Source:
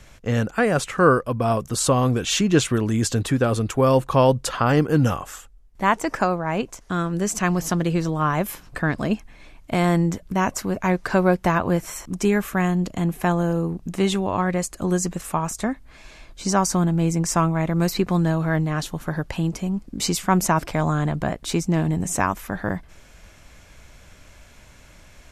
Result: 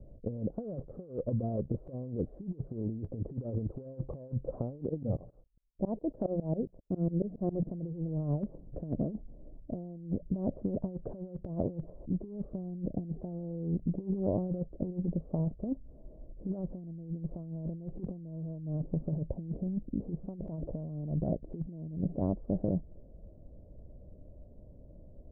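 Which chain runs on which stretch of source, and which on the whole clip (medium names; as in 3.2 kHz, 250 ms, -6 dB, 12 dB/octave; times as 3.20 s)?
4.89–7.67 s: hum notches 60/120/180 Hz + gate -44 dBFS, range -20 dB + tremolo saw up 7.3 Hz, depth 100%
whole clip: elliptic low-pass 590 Hz, stop band 80 dB; dynamic bell 160 Hz, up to +3 dB, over -37 dBFS, Q 6.9; compressor with a negative ratio -26 dBFS, ratio -0.5; trim -7 dB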